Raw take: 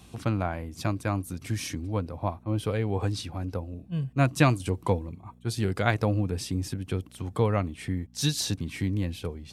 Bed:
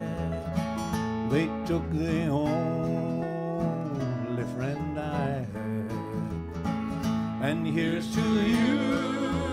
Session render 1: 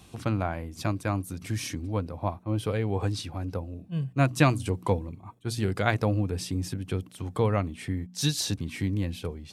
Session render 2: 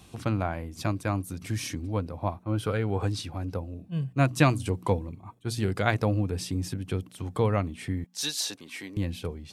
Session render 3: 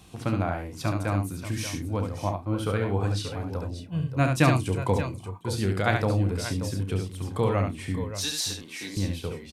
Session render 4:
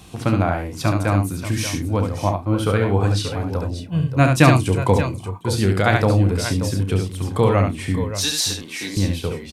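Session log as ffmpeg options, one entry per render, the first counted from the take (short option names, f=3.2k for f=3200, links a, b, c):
-af "bandreject=f=60:t=h:w=4,bandreject=f=120:t=h:w=4,bandreject=f=180:t=h:w=4,bandreject=f=240:t=h:w=4"
-filter_complex "[0:a]asettb=1/sr,asplit=3[a][b][c];[a]atrim=end=2.464[d];[b]atrim=start=2.46:end=3.03,asetpts=PTS-STARTPTS,afade=t=in:d=0.004:c=qsin,afade=t=out:st=0.566:d=0.004:c=qsin,equalizer=f=1.4k:t=o:w=0.22:g=12.5[e];[c]atrim=start=3.026[f];[d][e]acrossfade=d=0.004:c1=hsin:c2=qsin[g];[g][f]acrossfade=d=0.004:c1=qsin:c2=hsin,asettb=1/sr,asplit=3[h][i][j];[h]atrim=end=8.044[k];[i]atrim=start=8.04:end=8.97,asetpts=PTS-STARTPTS,afade=t=in:d=0.004:c=qsin,afade=t=out:st=0.926:d=0.004:c=qsin,highpass=490[l];[j]atrim=start=8.966[m];[k][l]acrossfade=d=0.004:c1=hsin:c2=qsin[n];[n][m]acrossfade=d=0.004:c1=qsin:c2=hsin"
-filter_complex "[0:a]asplit=2[a][b];[b]adelay=31,volume=-11.5dB[c];[a][c]amix=inputs=2:normalize=0,asplit=2[d][e];[e]aecho=0:1:70|582|584:0.562|0.251|0.119[f];[d][f]amix=inputs=2:normalize=0"
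-af "volume=8dB,alimiter=limit=-1dB:level=0:latency=1"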